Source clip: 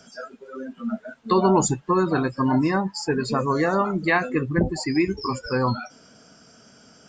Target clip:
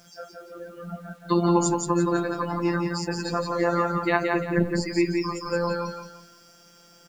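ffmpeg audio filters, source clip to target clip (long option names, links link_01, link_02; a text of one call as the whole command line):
ffmpeg -i in.wav -af "afftfilt=real='hypot(re,im)*cos(PI*b)':imag='0':win_size=1024:overlap=0.75,aecho=1:1:172|344|516|688:0.631|0.202|0.0646|0.0207,acrusher=bits=9:mix=0:aa=0.000001" out.wav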